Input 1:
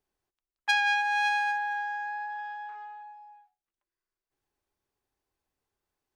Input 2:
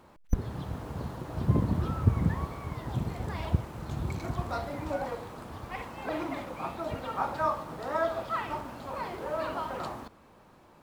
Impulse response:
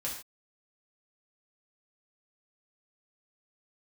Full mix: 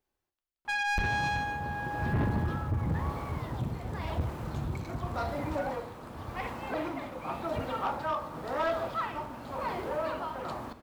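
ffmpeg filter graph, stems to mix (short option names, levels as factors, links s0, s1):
-filter_complex "[0:a]volume=0.794,asplit=2[s0][s1];[s1]volume=0.501[s2];[1:a]adelay=650,volume=1.33,asplit=2[s3][s4];[s4]volume=0.188[s5];[2:a]atrim=start_sample=2205[s6];[s2][s5]amix=inputs=2:normalize=0[s7];[s7][s6]afir=irnorm=-1:irlink=0[s8];[s0][s3][s8]amix=inputs=3:normalize=0,equalizer=f=7700:t=o:w=2:g=-3,tremolo=f=0.92:d=0.46,asoftclip=type=tanh:threshold=0.0631"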